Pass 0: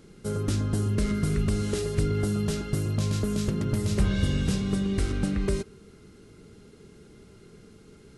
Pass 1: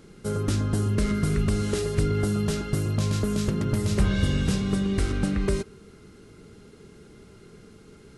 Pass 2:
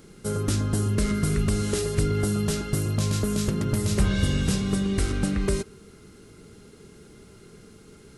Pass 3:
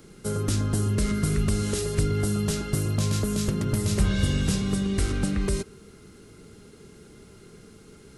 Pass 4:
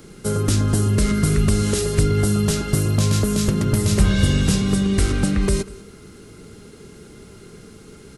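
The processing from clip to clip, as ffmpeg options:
-af "equalizer=f=1.2k:t=o:w=1.9:g=2.5,volume=1.5dB"
-af "highshelf=f=6.8k:g=8.5"
-filter_complex "[0:a]acrossover=split=190|3000[a][b][c];[b]acompressor=threshold=-27dB:ratio=6[d];[a][d][c]amix=inputs=3:normalize=0"
-af "aecho=1:1:194:0.0891,volume=6.5dB"

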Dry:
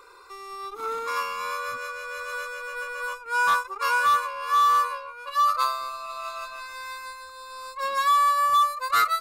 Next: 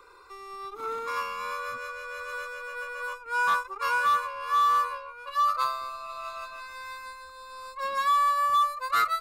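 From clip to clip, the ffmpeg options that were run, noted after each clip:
-filter_complex "[0:a]bass=f=250:g=6,treble=f=4k:g=-4,acrossover=split=190|540|3500[a][b][c][d];[a]alimiter=level_in=27.5dB:limit=-24dB:level=0:latency=1,volume=-27.5dB[e];[e][b][c][d]amix=inputs=4:normalize=0,volume=-3dB"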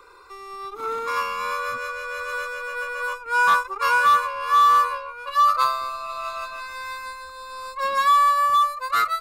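-af "dynaudnorm=f=220:g=9:m=3dB,volume=4dB"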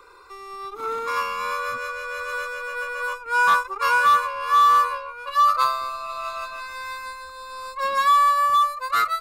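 -af anull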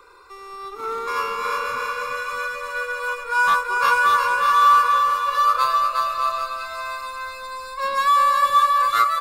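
-af "aecho=1:1:360|612|788.4|911.9|998.3:0.631|0.398|0.251|0.158|0.1"

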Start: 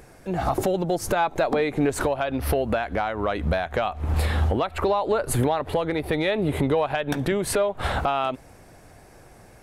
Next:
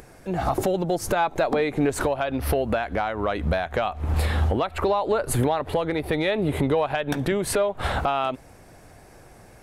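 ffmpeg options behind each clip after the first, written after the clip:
-af "acompressor=mode=upward:threshold=-45dB:ratio=2.5"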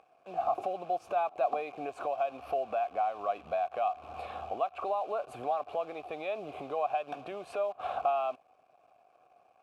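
-filter_complex "[0:a]acrusher=bits=7:dc=4:mix=0:aa=0.000001,asplit=3[a][b][c];[a]bandpass=f=730:t=q:w=8,volume=0dB[d];[b]bandpass=f=1.09k:t=q:w=8,volume=-6dB[e];[c]bandpass=f=2.44k:t=q:w=8,volume=-9dB[f];[d][e][f]amix=inputs=3:normalize=0"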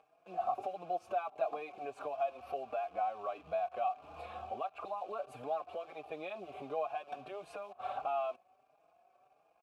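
-filter_complex "[0:a]asplit=2[a][b];[b]adelay=4.6,afreqshift=1.5[c];[a][c]amix=inputs=2:normalize=1,volume=-2dB"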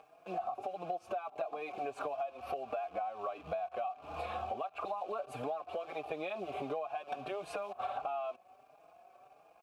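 -af "acompressor=threshold=-43dB:ratio=10,volume=8.5dB"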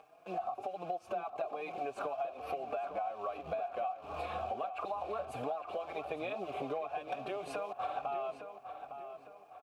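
-filter_complex "[0:a]asplit=2[a][b];[b]adelay=858,lowpass=f=3.3k:p=1,volume=-9dB,asplit=2[c][d];[d]adelay=858,lowpass=f=3.3k:p=1,volume=0.42,asplit=2[e][f];[f]adelay=858,lowpass=f=3.3k:p=1,volume=0.42,asplit=2[g][h];[h]adelay=858,lowpass=f=3.3k:p=1,volume=0.42,asplit=2[i][j];[j]adelay=858,lowpass=f=3.3k:p=1,volume=0.42[k];[a][c][e][g][i][k]amix=inputs=6:normalize=0"

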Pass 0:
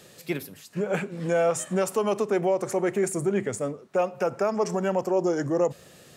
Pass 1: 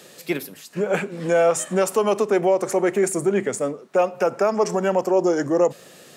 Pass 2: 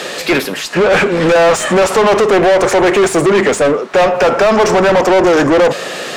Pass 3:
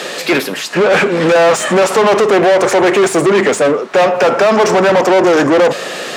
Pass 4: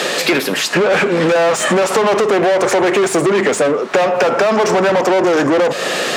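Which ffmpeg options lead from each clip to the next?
-af "highpass=200,volume=5.5dB"
-filter_complex "[0:a]asplit=2[a][b];[b]highpass=f=720:p=1,volume=31dB,asoftclip=type=tanh:threshold=-7.5dB[c];[a][c]amix=inputs=2:normalize=0,lowpass=f=3.2k:p=1,volume=-6dB,highshelf=f=9.9k:g=-11,volume=4.5dB"
-af "highpass=130"
-af "acompressor=threshold=-17dB:ratio=6,volume=5dB"

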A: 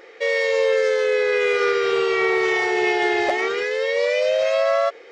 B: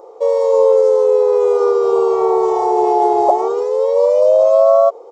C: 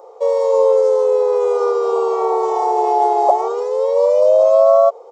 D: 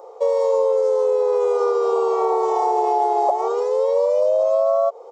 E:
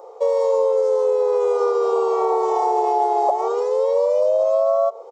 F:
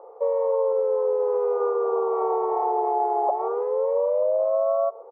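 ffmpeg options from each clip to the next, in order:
-af "firequalizer=gain_entry='entry(110,0);entry(180,-7);entry(410,6);entry(1000,13);entry(1700,-29);entry(3500,-16);entry(7300,0)':delay=0.05:min_phase=1,volume=1dB"
-af "highpass=f=450:w=0.5412,highpass=f=450:w=1.3066"
-af "acompressor=threshold=-15dB:ratio=6"
-af "aecho=1:1:126:0.0708"
-af "lowpass=f=1.6k:w=0.5412,lowpass=f=1.6k:w=1.3066,volume=-4.5dB"

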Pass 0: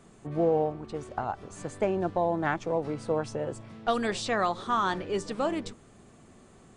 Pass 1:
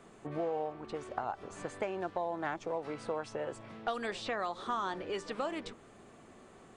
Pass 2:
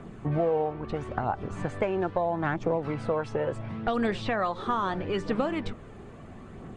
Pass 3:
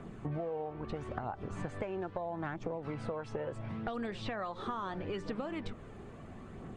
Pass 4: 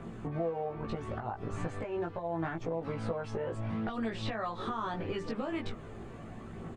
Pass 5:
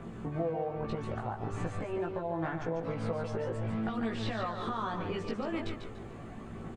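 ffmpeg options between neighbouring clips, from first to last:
-filter_complex "[0:a]bass=f=250:g=-9,treble=f=4k:g=-7,acrossover=split=940|4100[a][b][c];[a]acompressor=threshold=-39dB:ratio=4[d];[b]acompressor=threshold=-42dB:ratio=4[e];[c]acompressor=threshold=-55dB:ratio=4[f];[d][e][f]amix=inputs=3:normalize=0,volume=2dB"
-af "aphaser=in_gain=1:out_gain=1:delay=2.5:decay=0.32:speed=0.75:type=triangular,bass=f=250:g=11,treble=f=4k:g=-10,volume=6.5dB"
-af "acompressor=threshold=-31dB:ratio=6,volume=-3.5dB"
-filter_complex "[0:a]alimiter=level_in=4dB:limit=-24dB:level=0:latency=1:release=157,volume=-4dB,asplit=2[a][b];[b]adelay=18,volume=-2dB[c];[a][c]amix=inputs=2:normalize=0,volume=1.5dB"
-af "aecho=1:1:145|290|435|580:0.447|0.13|0.0376|0.0109"

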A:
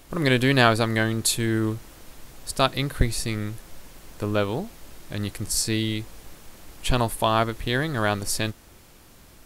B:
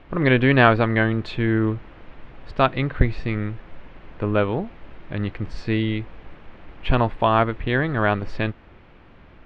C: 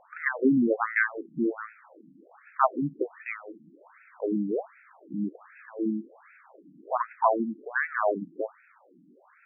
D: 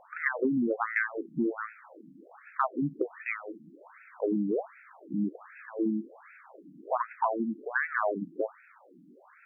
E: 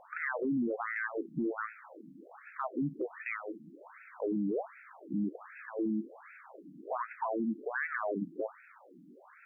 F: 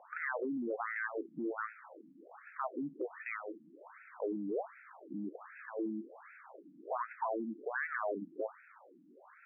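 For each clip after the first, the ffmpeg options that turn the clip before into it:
-af "lowpass=f=2.7k:w=0.5412,lowpass=f=2.7k:w=1.3066,volume=3.5dB"
-af "afftfilt=real='re*between(b*sr/1024,220*pow(1900/220,0.5+0.5*sin(2*PI*1.3*pts/sr))/1.41,220*pow(1900/220,0.5+0.5*sin(2*PI*1.3*pts/sr))*1.41)':imag='im*between(b*sr/1024,220*pow(1900/220,0.5+0.5*sin(2*PI*1.3*pts/sr))/1.41,220*pow(1900/220,0.5+0.5*sin(2*PI*1.3*pts/sr))*1.41)':win_size=1024:overlap=0.75"
-af "acompressor=threshold=-26dB:ratio=10,volume=2dB"
-af "alimiter=level_in=2dB:limit=-24dB:level=0:latency=1:release=16,volume=-2dB"
-af "highpass=330,lowpass=2.2k,volume=-1dB"

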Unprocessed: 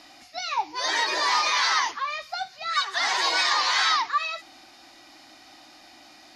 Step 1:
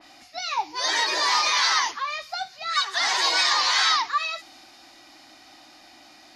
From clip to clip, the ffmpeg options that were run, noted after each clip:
-af "adynamicequalizer=threshold=0.02:dfrequency=3200:dqfactor=0.7:tfrequency=3200:tqfactor=0.7:attack=5:release=100:ratio=0.375:range=2:mode=boostabove:tftype=highshelf"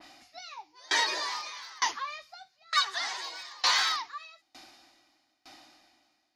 -af "asoftclip=type=hard:threshold=-13dB,aeval=exprs='val(0)*pow(10,-29*if(lt(mod(1.1*n/s,1),2*abs(1.1)/1000),1-mod(1.1*n/s,1)/(2*abs(1.1)/1000),(mod(1.1*n/s,1)-2*abs(1.1)/1000)/(1-2*abs(1.1)/1000))/20)':c=same"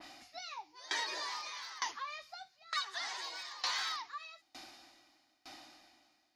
-af "acompressor=threshold=-42dB:ratio=2"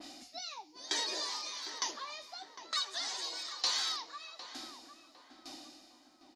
-filter_complex "[0:a]equalizer=f=125:t=o:w=1:g=-5,equalizer=f=250:t=o:w=1:g=10,equalizer=f=500:t=o:w=1:g=4,equalizer=f=1k:t=o:w=1:g=-3,equalizer=f=2k:t=o:w=1:g=-5,equalizer=f=4k:t=o:w=1:g=4,equalizer=f=8k:t=o:w=1:g=8,asplit=2[a][b];[b]adelay=755,lowpass=f=1.7k:p=1,volume=-9dB,asplit=2[c][d];[d]adelay=755,lowpass=f=1.7k:p=1,volume=0.44,asplit=2[e][f];[f]adelay=755,lowpass=f=1.7k:p=1,volume=0.44,asplit=2[g][h];[h]adelay=755,lowpass=f=1.7k:p=1,volume=0.44,asplit=2[i][j];[j]adelay=755,lowpass=f=1.7k:p=1,volume=0.44[k];[a][c][e][g][i][k]amix=inputs=6:normalize=0"

